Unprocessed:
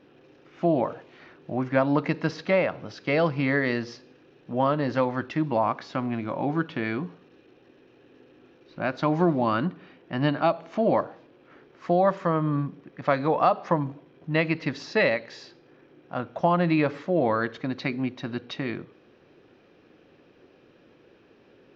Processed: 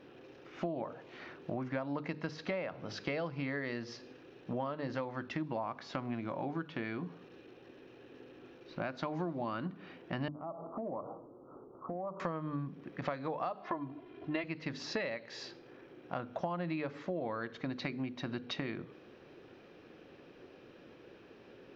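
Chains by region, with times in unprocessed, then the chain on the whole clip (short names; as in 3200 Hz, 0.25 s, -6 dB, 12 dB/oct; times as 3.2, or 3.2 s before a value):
10.28–12.2 switching dead time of 0.063 ms + steep low-pass 1300 Hz 96 dB/oct + compressor 4:1, threshold -38 dBFS
13.62–14.44 LPF 4500 Hz 24 dB/oct + comb 2.9 ms, depth 87%
whole clip: notches 50/100/150/200/250/300 Hz; compressor 6:1, threshold -36 dBFS; gain +1 dB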